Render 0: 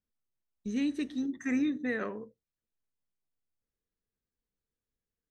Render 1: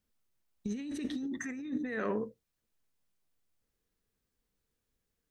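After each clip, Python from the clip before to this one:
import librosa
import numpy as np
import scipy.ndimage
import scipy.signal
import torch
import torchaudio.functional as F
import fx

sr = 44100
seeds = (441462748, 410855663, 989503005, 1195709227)

y = fx.over_compress(x, sr, threshold_db=-38.0, ratio=-1.0)
y = y * 10.0 ** (2.0 / 20.0)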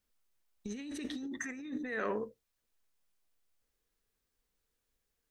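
y = fx.peak_eq(x, sr, hz=150.0, db=-8.5, octaves=2.3)
y = y * 10.0 ** (1.5 / 20.0)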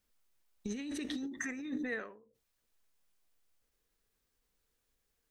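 y = fx.end_taper(x, sr, db_per_s=100.0)
y = y * 10.0 ** (2.5 / 20.0)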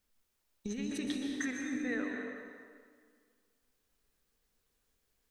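y = fx.rev_plate(x, sr, seeds[0], rt60_s=1.9, hf_ratio=0.8, predelay_ms=110, drr_db=1.5)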